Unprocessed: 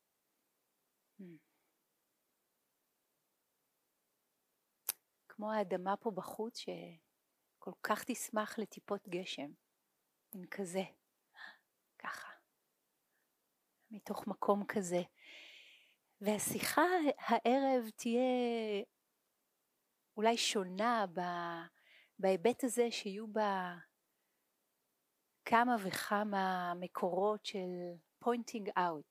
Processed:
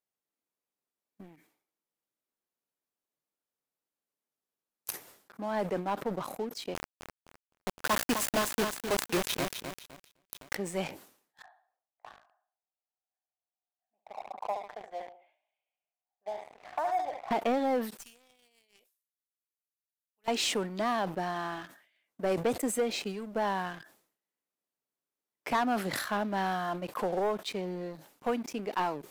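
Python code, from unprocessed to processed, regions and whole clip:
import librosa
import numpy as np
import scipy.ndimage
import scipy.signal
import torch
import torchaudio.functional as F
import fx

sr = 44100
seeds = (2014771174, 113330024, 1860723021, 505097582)

y = fx.chain(x, sr, fx.quant_companded(bits=2),
    fx.echo_crushed(ms=257, feedback_pct=35, bits=11, wet_db=-12), at=(6.74, 10.55))
y = fx.chain(y, sr, fx.ladder_bandpass(hz=780.0, resonance_pct=75),
    fx.echo_feedback(ms=71, feedback_pct=35, wet_db=-9), at=(11.42, 17.31))
y = fx.chain(y, sr, fx.differentiator(),
    fx.tube_stage(drive_db=36.0, bias=0.8), at=(17.98, 20.28))
y = fx.leveller(y, sr, passes=3)
y = fx.sustainer(y, sr, db_per_s=110.0)
y = y * 10.0 ** (-5.5 / 20.0)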